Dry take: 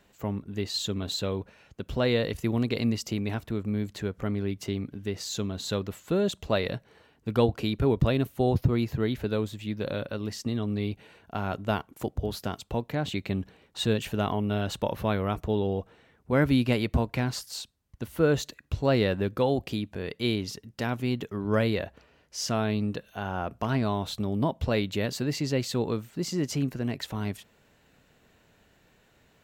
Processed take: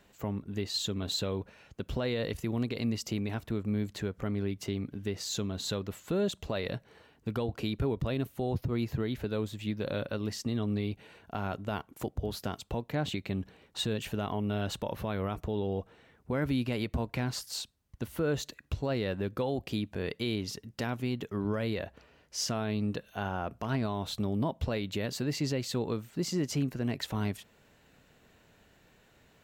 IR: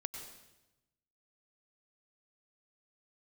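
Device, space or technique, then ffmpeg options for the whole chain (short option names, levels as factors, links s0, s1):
stacked limiters: -af "alimiter=limit=0.15:level=0:latency=1:release=78,alimiter=limit=0.0794:level=0:latency=1:release=316"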